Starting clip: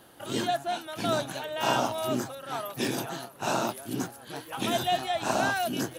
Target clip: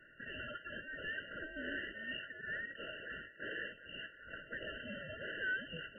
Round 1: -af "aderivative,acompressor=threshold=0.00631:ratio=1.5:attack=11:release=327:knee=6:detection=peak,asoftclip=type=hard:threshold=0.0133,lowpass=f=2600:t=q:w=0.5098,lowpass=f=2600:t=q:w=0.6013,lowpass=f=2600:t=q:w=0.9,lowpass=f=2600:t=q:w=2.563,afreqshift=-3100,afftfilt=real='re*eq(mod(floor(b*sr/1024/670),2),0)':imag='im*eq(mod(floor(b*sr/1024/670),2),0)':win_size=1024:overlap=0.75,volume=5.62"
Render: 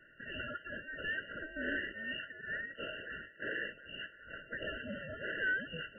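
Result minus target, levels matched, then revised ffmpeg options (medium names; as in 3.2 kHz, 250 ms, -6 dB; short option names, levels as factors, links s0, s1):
hard clipper: distortion -9 dB
-af "aderivative,acompressor=threshold=0.00631:ratio=1.5:attack=11:release=327:knee=6:detection=peak,asoftclip=type=hard:threshold=0.00531,lowpass=f=2600:t=q:w=0.5098,lowpass=f=2600:t=q:w=0.6013,lowpass=f=2600:t=q:w=0.9,lowpass=f=2600:t=q:w=2.563,afreqshift=-3100,afftfilt=real='re*eq(mod(floor(b*sr/1024/670),2),0)':imag='im*eq(mod(floor(b*sr/1024/670),2),0)':win_size=1024:overlap=0.75,volume=5.62"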